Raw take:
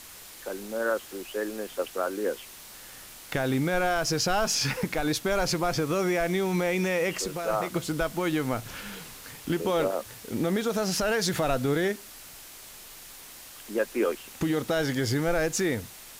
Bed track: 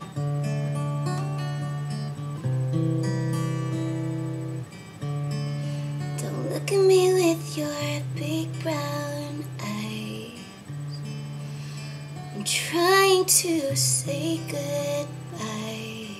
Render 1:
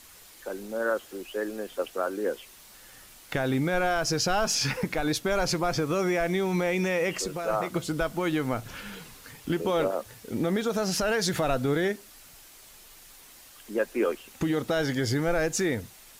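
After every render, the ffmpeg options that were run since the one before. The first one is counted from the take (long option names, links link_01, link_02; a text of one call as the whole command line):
ffmpeg -i in.wav -af "afftdn=noise_reduction=6:noise_floor=-46" out.wav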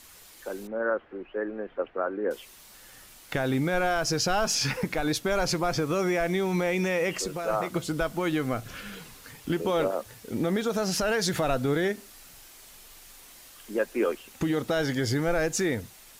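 ffmpeg -i in.wav -filter_complex "[0:a]asettb=1/sr,asplit=3[link_01][link_02][link_03];[link_01]atrim=end=0.674[link_04];[link_02]atrim=start=0.67:end=2.31,asetpts=PTS-STARTPTS,afade=type=in:duration=0.004:curve=qsin,afade=type=out:start_time=1.636:duration=0.004:curve=qsin,lowpass=frequency=2100:width=0.5412,lowpass=frequency=2100:width=1.3066[link_05];[link_03]atrim=start=2.306[link_06];[link_04][link_05]acrossfade=duration=0.004:curve1=hsin:curve2=qsin[link_07];[link_07][link_06]acrossfade=duration=0.004:curve1=qsin:curve2=hsin,asettb=1/sr,asplit=3[link_08][link_09][link_10];[link_08]atrim=end=8.334[link_11];[link_09]atrim=start=8.33:end=8.98,asetpts=PTS-STARTPTS,afade=type=in:duration=0.004:curve=qsin,afade=type=out:start_time=0.646:duration=0.004:curve=qsin,asuperstop=centerf=900:order=4:qfactor=7.2[link_12];[link_10]atrim=start=8.976[link_13];[link_11][link_12]acrossfade=duration=0.004:curve1=hsin:curve2=qsin[link_14];[link_14][link_13]acrossfade=duration=0.004:curve1=qsin:curve2=hsin,asettb=1/sr,asplit=3[link_15][link_16][link_17];[link_15]atrim=end=11.934[link_18];[link_16]atrim=start=11.93:end=13.78,asetpts=PTS-STARTPTS,afade=type=in:duration=0.004:curve=qsin,afade=type=out:start_time=1.846:duration=0.004:curve=qsin,asplit=2[link_19][link_20];[link_20]adelay=45,volume=-6.5dB[link_21];[link_19][link_21]amix=inputs=2:normalize=0,atrim=end_sample=81585[link_22];[link_17]atrim=start=13.776[link_23];[link_18][link_22]acrossfade=duration=0.004:curve1=hsin:curve2=qsin[link_24];[link_24][link_23]acrossfade=duration=0.004:curve1=qsin:curve2=hsin" out.wav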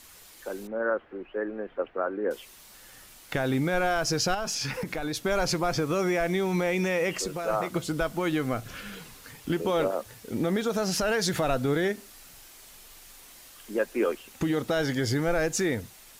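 ffmpeg -i in.wav -filter_complex "[0:a]asettb=1/sr,asplit=3[link_01][link_02][link_03];[link_01]atrim=end=4.344[link_04];[link_02]atrim=start=4.34:end=5.2,asetpts=PTS-STARTPTS,afade=type=in:duration=0.004:curve=qsin,afade=type=out:start_time=0.856:duration=0.004:curve=qsin,acompressor=threshold=-27dB:ratio=6:attack=3.2:release=140:knee=1:detection=peak[link_05];[link_03]atrim=start=5.196[link_06];[link_04][link_05]acrossfade=duration=0.004:curve1=hsin:curve2=qsin[link_07];[link_07][link_06]acrossfade=duration=0.004:curve1=qsin:curve2=hsin" out.wav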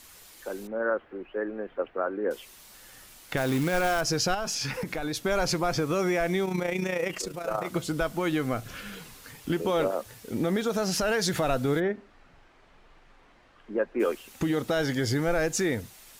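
ffmpeg -i in.wav -filter_complex "[0:a]asettb=1/sr,asplit=3[link_01][link_02][link_03];[link_01]atrim=end=3.374[link_04];[link_02]atrim=start=3.37:end=4.01,asetpts=PTS-STARTPTS,afade=type=in:duration=0.004:curve=qsin,afade=type=out:start_time=0.636:duration=0.004:curve=qsin,acrusher=bits=3:mode=log:mix=0:aa=0.000001[link_05];[link_03]atrim=start=4.006[link_06];[link_04][link_05]acrossfade=duration=0.004:curve1=hsin:curve2=qsin[link_07];[link_07][link_06]acrossfade=duration=0.004:curve1=qsin:curve2=hsin,asplit=3[link_08][link_09][link_10];[link_08]afade=type=out:start_time=6.44:duration=0.02[link_11];[link_09]tremolo=f=29:d=0.621,afade=type=in:start_time=6.44:duration=0.02,afade=type=out:start_time=7.64:duration=0.02[link_12];[link_10]afade=type=in:start_time=7.64:duration=0.02[link_13];[link_11][link_12][link_13]amix=inputs=3:normalize=0,asplit=3[link_14][link_15][link_16];[link_14]afade=type=out:start_time=11.79:duration=0.02[link_17];[link_15]lowpass=1700,afade=type=in:start_time=11.79:duration=0.02,afade=type=out:start_time=13.99:duration=0.02[link_18];[link_16]afade=type=in:start_time=13.99:duration=0.02[link_19];[link_17][link_18][link_19]amix=inputs=3:normalize=0" out.wav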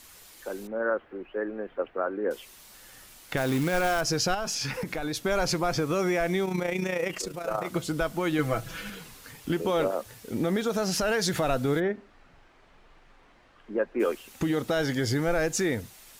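ffmpeg -i in.wav -filter_complex "[0:a]asettb=1/sr,asplit=3[link_01][link_02][link_03];[link_01]atrim=end=8.384[link_04];[link_02]atrim=start=8.38:end=8.9,asetpts=PTS-STARTPTS,afade=type=in:duration=0.004:curve=qsin,afade=type=out:start_time=0.516:duration=0.004:curve=qsin,aecho=1:1:6.1:0.87,atrim=end_sample=22932[link_05];[link_03]atrim=start=8.896[link_06];[link_04][link_05]acrossfade=duration=0.004:curve1=hsin:curve2=qsin[link_07];[link_07][link_06]acrossfade=duration=0.004:curve1=qsin:curve2=hsin" out.wav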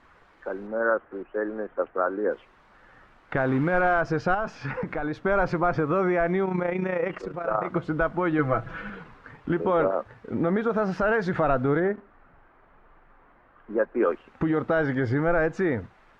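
ffmpeg -i in.wav -filter_complex "[0:a]asplit=2[link_01][link_02];[link_02]acrusher=bits=6:mix=0:aa=0.000001,volume=-11.5dB[link_03];[link_01][link_03]amix=inputs=2:normalize=0,lowpass=frequency=1400:width_type=q:width=1.5" out.wav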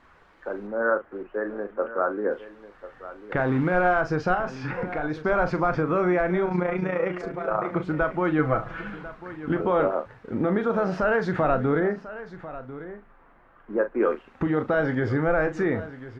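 ffmpeg -i in.wav -filter_complex "[0:a]asplit=2[link_01][link_02];[link_02]adelay=39,volume=-10dB[link_03];[link_01][link_03]amix=inputs=2:normalize=0,aecho=1:1:1045:0.178" out.wav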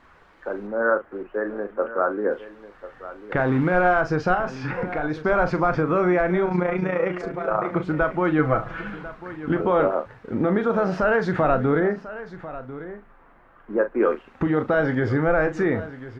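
ffmpeg -i in.wav -af "volume=2.5dB" out.wav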